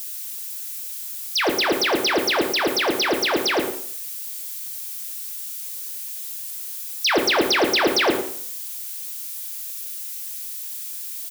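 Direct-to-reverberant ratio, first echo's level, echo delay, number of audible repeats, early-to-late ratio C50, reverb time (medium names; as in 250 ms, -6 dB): 2.5 dB, -13.0 dB, 111 ms, 1, 7.0 dB, 0.55 s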